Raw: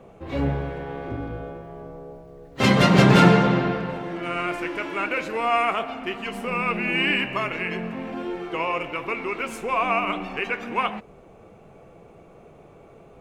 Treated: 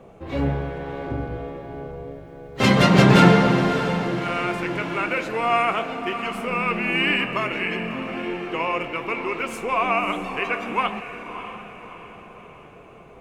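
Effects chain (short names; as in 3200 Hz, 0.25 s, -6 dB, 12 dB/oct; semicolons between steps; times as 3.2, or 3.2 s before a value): diffused feedback echo 0.614 s, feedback 47%, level -10.5 dB; gain +1 dB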